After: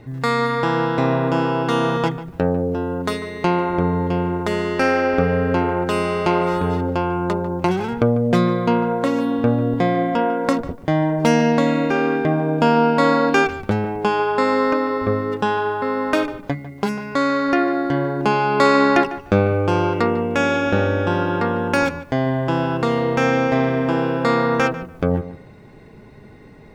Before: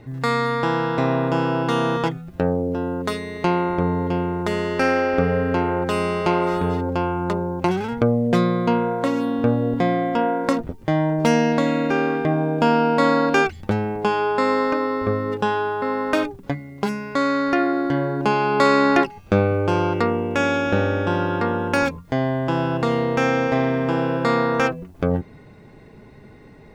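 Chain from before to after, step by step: tape echo 0.147 s, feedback 22%, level -13 dB, low-pass 2600 Hz; gain +1.5 dB

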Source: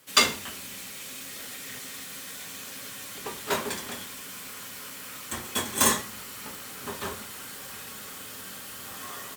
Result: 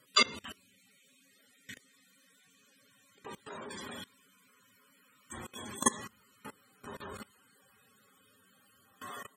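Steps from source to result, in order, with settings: loudest bins only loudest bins 64; level quantiser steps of 22 dB

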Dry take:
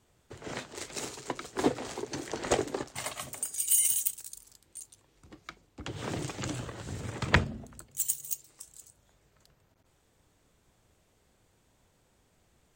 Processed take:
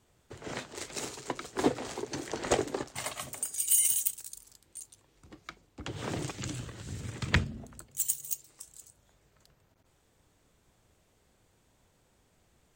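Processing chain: 6.31–7.57 bell 740 Hz -9 dB 2.1 oct

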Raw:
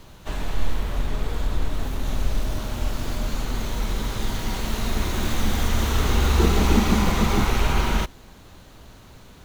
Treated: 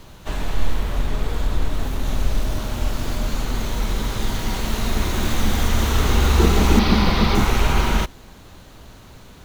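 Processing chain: 6.79–7.35 resonant high shelf 5800 Hz -6.5 dB, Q 3; gain +3 dB

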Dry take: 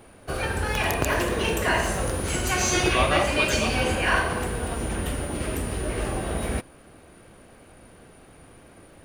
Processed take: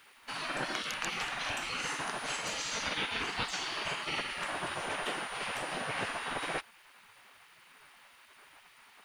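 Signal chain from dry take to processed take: LPF 5100 Hz 12 dB/oct; spectral gate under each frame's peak -15 dB weak; vocal rider within 3 dB 0.5 s; added noise white -70 dBFS; gain -1 dB

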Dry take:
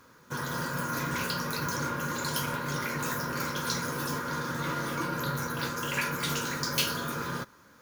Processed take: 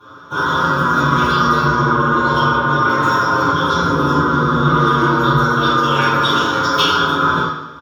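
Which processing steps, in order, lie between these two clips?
1.66–2.89 LPF 2600 Hz 6 dB/oct; 3.39–4.74 tilt shelf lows +4 dB, about 690 Hz; feedback echo 0.14 s, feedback 46%, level -16 dB; reverb RT60 0.70 s, pre-delay 3 ms, DRR -9.5 dB; endless flanger 7.2 ms -0.3 Hz; gain -1 dB

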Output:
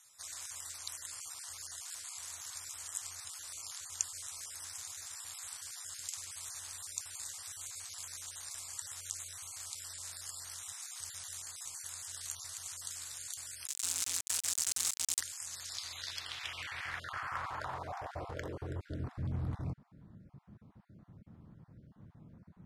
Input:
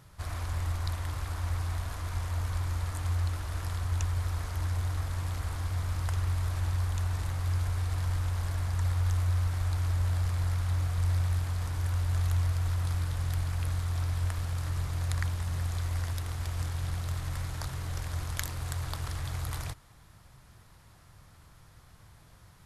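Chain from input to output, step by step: random spectral dropouts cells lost 25%; 13.67–15.21 companded quantiser 2-bit; band-pass sweep 7500 Hz -> 220 Hz, 15.42–19.2; gain +12 dB

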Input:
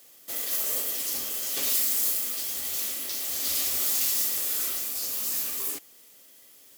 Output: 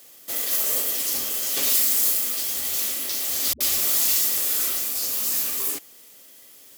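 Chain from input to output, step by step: 3.53–4.22 dispersion highs, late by 75 ms, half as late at 320 Hz; gain +5 dB

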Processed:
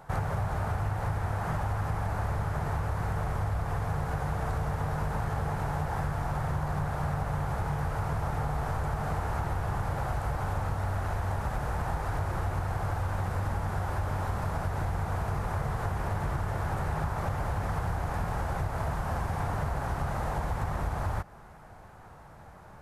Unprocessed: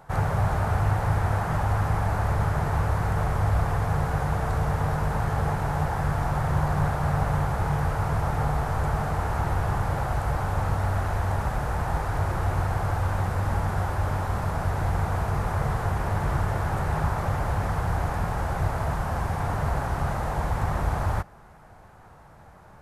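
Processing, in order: compressor, threshold -27 dBFS, peak gain reduction 9 dB

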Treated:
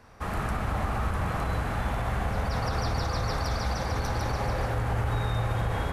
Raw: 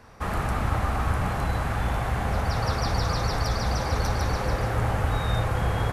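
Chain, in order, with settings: spring tank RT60 3.2 s, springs 45/52 ms, chirp 20 ms, DRR 3.5 dB; limiter -15.5 dBFS, peak gain reduction 5 dB; gain -3.5 dB

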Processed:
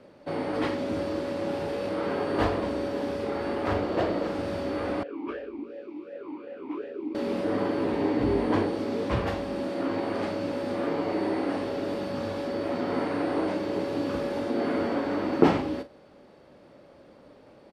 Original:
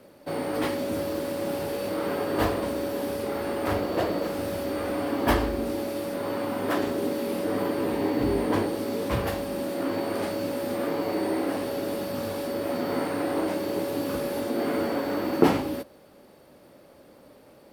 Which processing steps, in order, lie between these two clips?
air absorption 100 m; doubler 42 ms -13 dB; 5.03–7.15 vowel sweep e-u 2.7 Hz

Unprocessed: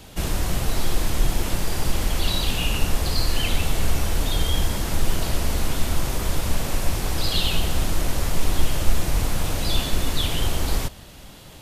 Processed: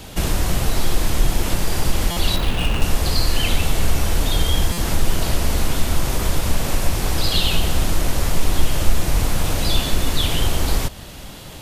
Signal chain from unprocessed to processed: 2.36–2.82 median filter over 9 samples; in parallel at -1 dB: compressor, threshold -27 dBFS, peak gain reduction 18 dB; on the sum: stuck buffer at 2.11/4.72, samples 256, times 9; gain +1.5 dB

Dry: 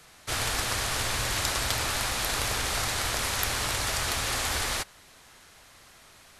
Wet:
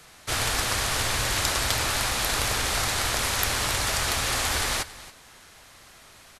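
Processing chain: echo 0.276 s -17.5 dB; gain +3 dB

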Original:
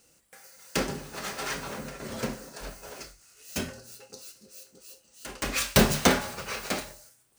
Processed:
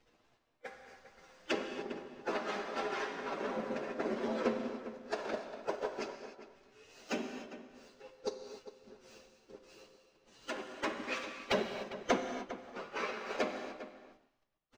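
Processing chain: half-wave gain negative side -7 dB; HPF 260 Hz 24 dB/oct; notch 4300 Hz, Q 25; in parallel at +1 dB: level quantiser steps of 23 dB; on the sum: transient shaper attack +12 dB, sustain -10 dB; compressor 4:1, threshold -30 dBFS, peak gain reduction 22.5 dB; bit-crush 9-bit; tilt shelf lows +4 dB, about 920 Hz; plain phase-vocoder stretch 2×; air absorption 190 m; outdoor echo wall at 69 m, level -13 dB; non-linear reverb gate 0.32 s flat, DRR 6 dB

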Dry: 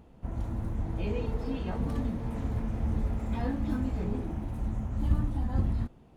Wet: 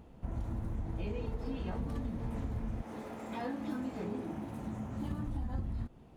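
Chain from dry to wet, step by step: 2.81–5.26 HPF 400 Hz -> 120 Hz 12 dB/oct; compressor, threshold -33 dBFS, peak gain reduction 11 dB

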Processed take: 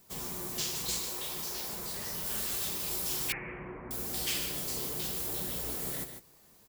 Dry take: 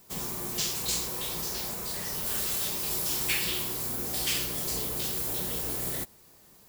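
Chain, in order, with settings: echo 0.147 s -8.5 dB; flange 0.73 Hz, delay 0.4 ms, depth 8.2 ms, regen -63%; 0.98–1.68 low shelf 170 Hz -8 dB; 3.32–3.91 steep low-pass 2300 Hz 72 dB/oct

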